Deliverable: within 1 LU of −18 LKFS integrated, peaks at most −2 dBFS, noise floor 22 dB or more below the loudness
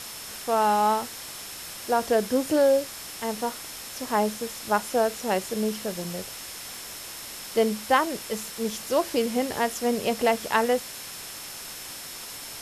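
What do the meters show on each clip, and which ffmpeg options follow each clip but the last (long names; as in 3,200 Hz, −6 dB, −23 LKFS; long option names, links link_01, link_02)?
interfering tone 5,300 Hz; level of the tone −46 dBFS; background noise floor −39 dBFS; target noise floor −49 dBFS; integrated loudness −27.0 LKFS; sample peak −8.0 dBFS; target loudness −18.0 LKFS
→ -af "bandreject=frequency=5300:width=30"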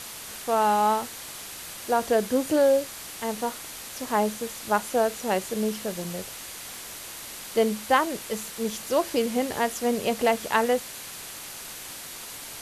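interfering tone none found; background noise floor −40 dBFS; target noise floor −49 dBFS
→ -af "afftdn=noise_reduction=9:noise_floor=-40"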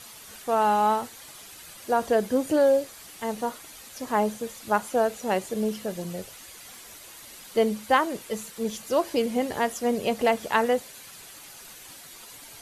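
background noise floor −46 dBFS; target noise floor −48 dBFS
→ -af "afftdn=noise_reduction=6:noise_floor=-46"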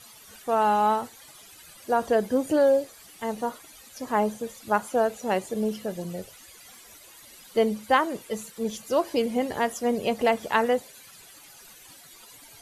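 background noise floor −50 dBFS; integrated loudness −26.0 LKFS; sample peak −8.0 dBFS; target loudness −18.0 LKFS
→ -af "volume=8dB,alimiter=limit=-2dB:level=0:latency=1"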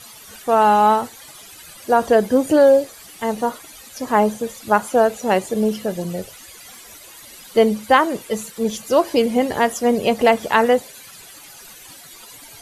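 integrated loudness −18.0 LKFS; sample peak −2.0 dBFS; background noise floor −42 dBFS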